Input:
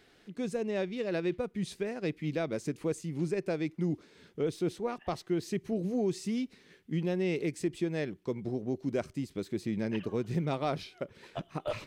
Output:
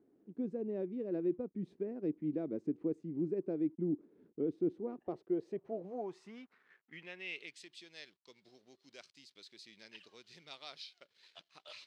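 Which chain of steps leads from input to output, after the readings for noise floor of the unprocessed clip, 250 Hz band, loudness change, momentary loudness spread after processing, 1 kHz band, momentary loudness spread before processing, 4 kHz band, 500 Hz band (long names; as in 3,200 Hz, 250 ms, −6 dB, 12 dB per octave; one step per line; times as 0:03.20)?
−63 dBFS, −5.5 dB, −5.0 dB, 20 LU, −12.5 dB, 7 LU, −6.0 dB, −7.0 dB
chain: slack as between gear wheels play −56 dBFS
band-pass filter sweep 300 Hz → 4,300 Hz, 0:04.90–0:07.79
level +1 dB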